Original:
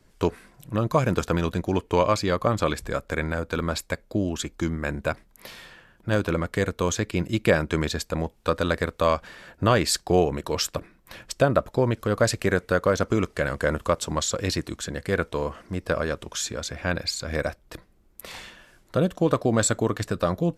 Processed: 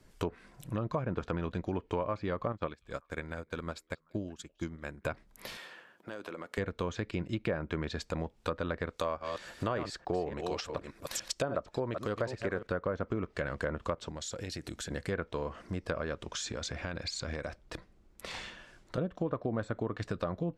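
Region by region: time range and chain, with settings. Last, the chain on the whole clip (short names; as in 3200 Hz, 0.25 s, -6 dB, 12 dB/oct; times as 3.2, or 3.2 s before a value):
2.52–5.05 delay with a stepping band-pass 0.191 s, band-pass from 3100 Hz, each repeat -1.4 oct, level -11.5 dB + upward expander 2.5:1, over -35 dBFS
5.57–6.58 HPF 320 Hz + high shelf 4600 Hz -5.5 dB + compressor 4:1, threshold -38 dBFS
8.9–12.67 reverse delay 0.287 s, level -9 dB + tone controls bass -5 dB, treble +11 dB
14.09–14.91 bell 1100 Hz -11 dB 0.2 oct + compressor, threshold -34 dBFS
16.27–18.98 LPF 7200 Hz + compressor, threshold -29 dBFS
whole clip: treble ducked by the level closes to 1700 Hz, closed at -18 dBFS; compressor 2.5:1, threshold -33 dBFS; gain -1.5 dB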